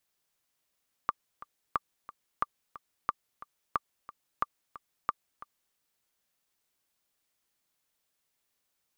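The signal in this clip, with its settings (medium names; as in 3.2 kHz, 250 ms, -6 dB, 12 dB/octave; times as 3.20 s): metronome 180 bpm, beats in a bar 2, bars 7, 1.18 kHz, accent 17 dB -13.5 dBFS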